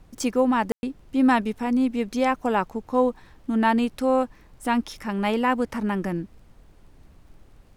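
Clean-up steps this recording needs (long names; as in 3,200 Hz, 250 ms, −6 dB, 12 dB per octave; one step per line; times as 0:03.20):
click removal
ambience match 0:00.72–0:00.83
noise reduction from a noise print 17 dB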